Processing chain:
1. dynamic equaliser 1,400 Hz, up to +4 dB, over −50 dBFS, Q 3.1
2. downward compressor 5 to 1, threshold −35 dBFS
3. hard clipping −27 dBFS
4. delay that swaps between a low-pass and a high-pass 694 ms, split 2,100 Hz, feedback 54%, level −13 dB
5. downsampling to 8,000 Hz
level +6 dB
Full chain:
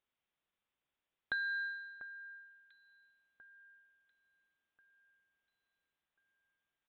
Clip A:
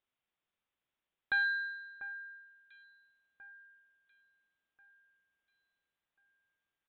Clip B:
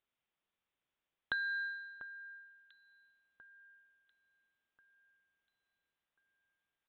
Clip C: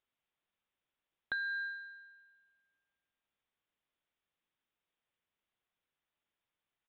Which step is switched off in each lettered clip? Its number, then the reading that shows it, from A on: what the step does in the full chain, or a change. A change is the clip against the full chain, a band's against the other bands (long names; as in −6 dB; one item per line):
2, average gain reduction 2.0 dB
3, distortion level −20 dB
4, change in momentary loudness spread −6 LU